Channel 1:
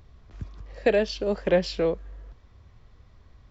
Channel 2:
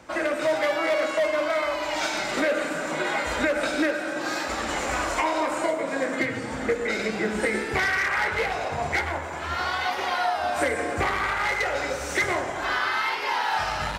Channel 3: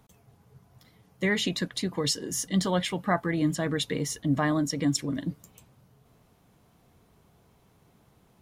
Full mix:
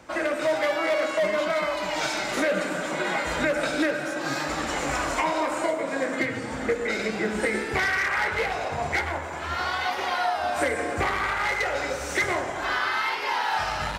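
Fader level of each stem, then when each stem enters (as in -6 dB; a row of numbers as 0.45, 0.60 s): off, -0.5 dB, -12.0 dB; off, 0.00 s, 0.00 s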